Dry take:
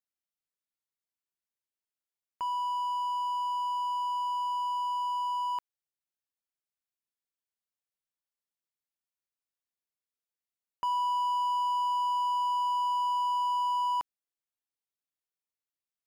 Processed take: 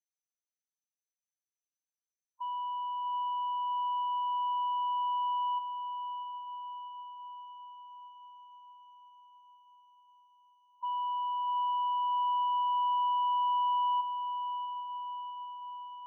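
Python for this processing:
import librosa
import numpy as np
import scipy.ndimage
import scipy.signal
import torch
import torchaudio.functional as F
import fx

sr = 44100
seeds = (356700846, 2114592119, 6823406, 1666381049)

y = fx.lowpass_res(x, sr, hz=6100.0, q=11.0)
y = fx.spec_topn(y, sr, count=4)
y = fx.echo_diffused(y, sr, ms=742, feedback_pct=65, wet_db=-9.5)
y = y * 10.0 ** (-4.5 / 20.0)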